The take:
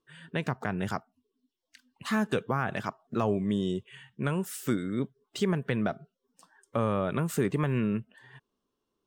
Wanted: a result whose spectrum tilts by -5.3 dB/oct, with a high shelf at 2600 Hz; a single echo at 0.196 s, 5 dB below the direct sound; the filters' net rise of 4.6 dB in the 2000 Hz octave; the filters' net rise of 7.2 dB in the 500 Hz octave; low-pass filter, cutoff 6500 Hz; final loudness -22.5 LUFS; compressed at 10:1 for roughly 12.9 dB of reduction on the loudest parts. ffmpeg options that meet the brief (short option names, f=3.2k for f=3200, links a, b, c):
-af "lowpass=6.5k,equalizer=f=500:t=o:g=9,equalizer=f=2k:t=o:g=7.5,highshelf=f=2.6k:g=-5,acompressor=threshold=-31dB:ratio=10,aecho=1:1:196:0.562,volume=14dB"